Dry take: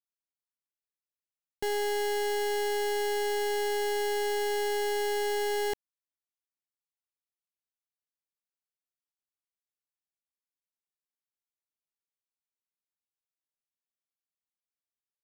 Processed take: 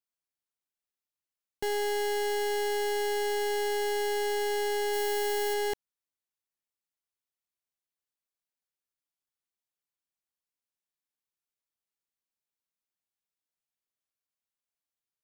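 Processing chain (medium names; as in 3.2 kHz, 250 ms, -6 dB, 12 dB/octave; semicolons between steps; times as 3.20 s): 4.93–5.54 s: treble shelf 11 kHz +8 dB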